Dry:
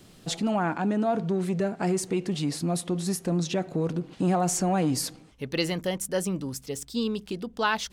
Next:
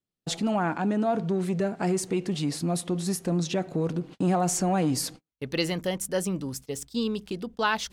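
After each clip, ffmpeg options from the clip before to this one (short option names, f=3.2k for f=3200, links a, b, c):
-af "agate=range=-39dB:threshold=-41dB:ratio=16:detection=peak"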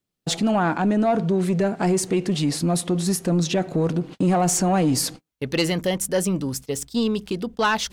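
-af "asoftclip=type=tanh:threshold=-19dB,volume=7dB"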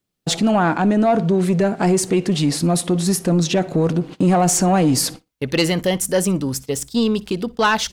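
-af "aecho=1:1:60|120:0.0708|0.012,volume=4dB"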